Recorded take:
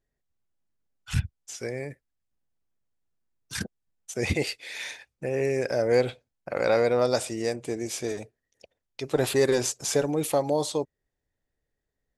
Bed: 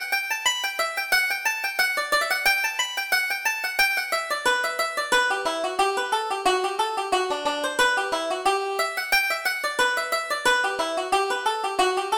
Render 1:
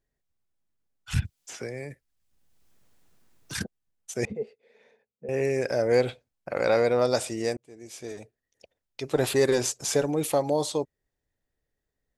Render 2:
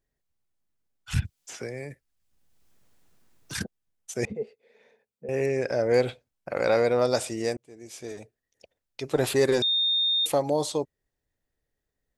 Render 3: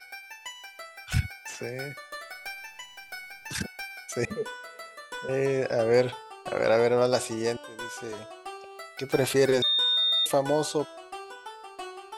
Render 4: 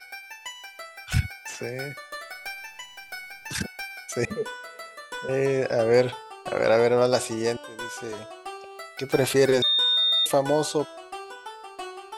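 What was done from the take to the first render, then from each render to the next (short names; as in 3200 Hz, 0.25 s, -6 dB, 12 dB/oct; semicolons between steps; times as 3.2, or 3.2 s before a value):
1.22–3.54 three-band squash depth 70%; 4.25–5.29 double band-pass 310 Hz, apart 1 oct; 7.57–9.33 fade in equal-power
5.46–5.94 air absorption 57 m; 9.62–10.26 bleep 3660 Hz -21 dBFS
add bed -18 dB
gain +2.5 dB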